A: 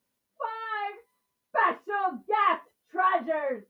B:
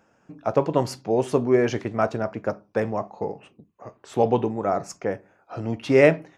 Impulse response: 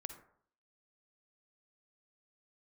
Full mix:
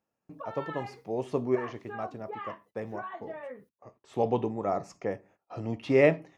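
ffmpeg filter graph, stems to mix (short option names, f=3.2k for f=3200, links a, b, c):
-filter_complex "[0:a]acompressor=threshold=-35dB:ratio=5,volume=-3.5dB,asplit=2[a][b];[1:a]bandreject=f=1.5k:w=5.8,acrossover=split=4500[c][d];[d]acompressor=threshold=-50dB:ratio=4:attack=1:release=60[e];[c][e]amix=inputs=2:normalize=0,volume=-5.5dB[f];[b]apad=whole_len=280978[g];[f][g]sidechaincompress=threshold=-44dB:ratio=12:attack=27:release=1470[h];[a][h]amix=inputs=2:normalize=0,agate=range=-17dB:threshold=-57dB:ratio=16:detection=peak"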